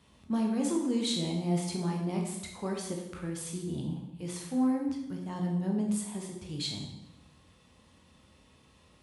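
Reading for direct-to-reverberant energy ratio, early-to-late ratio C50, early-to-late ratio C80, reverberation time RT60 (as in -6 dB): 0.0 dB, 4.0 dB, 7.0 dB, 0.90 s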